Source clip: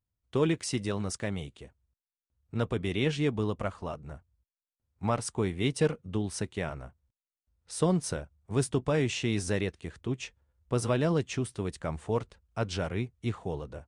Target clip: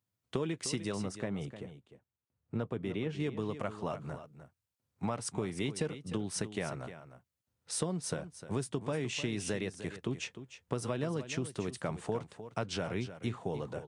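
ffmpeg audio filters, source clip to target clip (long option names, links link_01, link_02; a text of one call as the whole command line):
ffmpeg -i in.wav -filter_complex "[0:a]highpass=frequency=110:width=0.5412,highpass=frequency=110:width=1.3066,acompressor=threshold=-35dB:ratio=6,asettb=1/sr,asplit=3[link_01][link_02][link_03];[link_01]atrim=end=0.974[link_04];[link_02]atrim=start=0.97:end=3.2,asetpts=PTS-STARTPTS,afade=type=in:duration=0.004:curve=qsin,afade=type=out:start_time=2.226:duration=0.004:curve=qsin,highshelf=frequency=2300:gain=-11.5[link_05];[link_03]atrim=start=3.196[link_06];[link_04][link_05]acrossfade=duration=0.004:curve1=hsin:curve2=qsin[link_07];[link_07][link_06]acrossfade=duration=0.004:curve1=qsin:curve2=hsin,aecho=1:1:304:0.251,volume=3.5dB" out.wav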